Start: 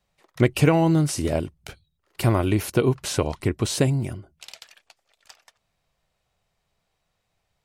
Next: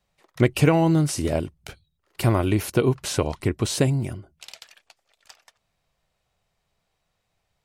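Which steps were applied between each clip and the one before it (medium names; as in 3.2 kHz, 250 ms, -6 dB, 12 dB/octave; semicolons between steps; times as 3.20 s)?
no audible change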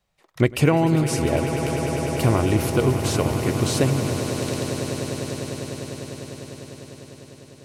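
echo with a slow build-up 100 ms, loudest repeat 8, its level -12 dB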